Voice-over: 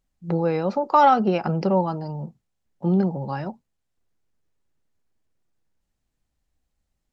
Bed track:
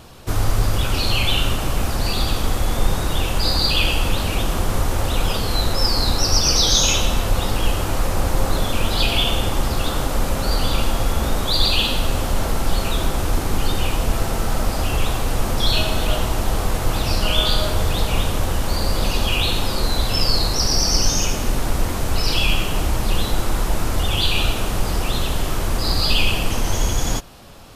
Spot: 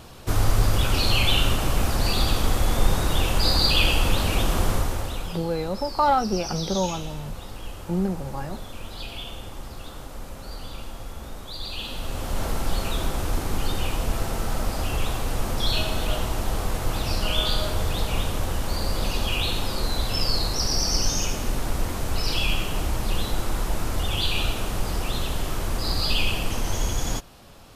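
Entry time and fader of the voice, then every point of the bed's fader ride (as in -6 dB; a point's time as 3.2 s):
5.05 s, -4.5 dB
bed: 4.68 s -1.5 dB
5.5 s -17 dB
11.61 s -17 dB
12.44 s -5.5 dB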